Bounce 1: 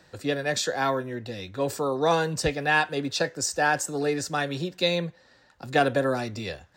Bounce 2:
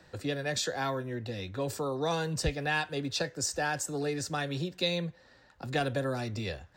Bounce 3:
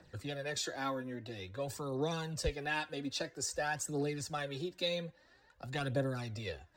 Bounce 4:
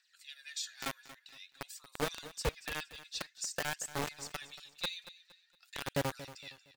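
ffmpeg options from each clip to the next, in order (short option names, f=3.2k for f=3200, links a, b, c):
-filter_complex "[0:a]lowshelf=f=160:g=11.5,acrossover=split=150|3000[a][b][c];[b]acompressor=threshold=-33dB:ratio=2[d];[a][d][c]amix=inputs=3:normalize=0,bass=f=250:g=-5,treble=f=4k:g=-3,volume=-1.5dB"
-af "aphaser=in_gain=1:out_gain=1:delay=4.2:decay=0.54:speed=0.5:type=triangular,volume=-7dB"
-filter_complex "[0:a]acrossover=split=1900[a][b];[a]acrusher=bits=4:mix=0:aa=0.000001[c];[c][b]amix=inputs=2:normalize=0,aecho=1:1:232|464|696:0.168|0.0571|0.0194,volume=-1dB"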